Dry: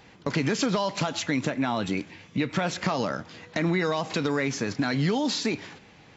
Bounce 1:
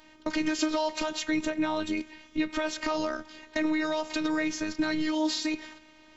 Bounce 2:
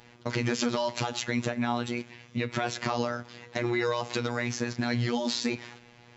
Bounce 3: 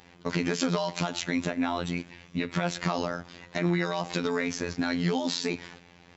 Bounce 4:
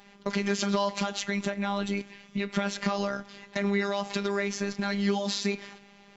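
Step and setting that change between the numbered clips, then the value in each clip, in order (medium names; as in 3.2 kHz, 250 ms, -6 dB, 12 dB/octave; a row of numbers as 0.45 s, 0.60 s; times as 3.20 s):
robot voice, frequency: 310 Hz, 120 Hz, 87 Hz, 200 Hz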